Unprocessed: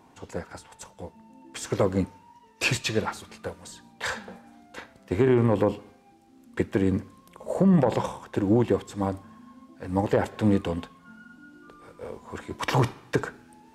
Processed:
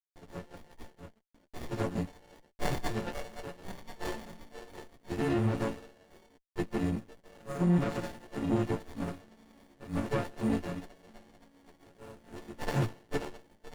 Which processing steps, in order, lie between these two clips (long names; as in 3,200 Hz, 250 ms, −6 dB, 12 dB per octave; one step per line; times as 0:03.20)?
every partial snapped to a pitch grid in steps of 4 semitones
low-shelf EQ 140 Hz +5.5 dB
on a send: echo through a band-pass that steps 520 ms, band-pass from 2,600 Hz, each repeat 0.7 octaves, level −6 dB
on the sum: noise gate with hold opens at −36 dBFS
dead-zone distortion −45.5 dBFS
flanger 1.9 Hz, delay 4 ms, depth 2.5 ms, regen −48%
windowed peak hold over 33 samples
level −4 dB